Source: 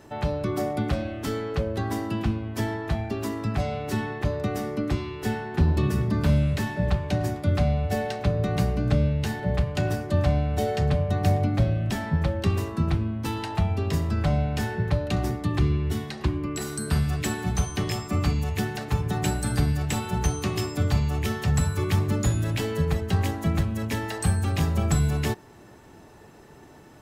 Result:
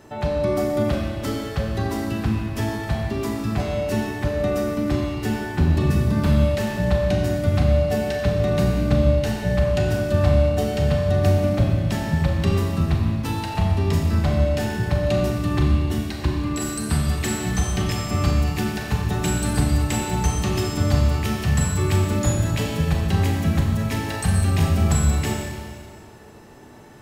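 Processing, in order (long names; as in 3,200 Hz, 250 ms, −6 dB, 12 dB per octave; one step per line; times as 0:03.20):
four-comb reverb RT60 1.9 s, combs from 29 ms, DRR 0.5 dB
level +1.5 dB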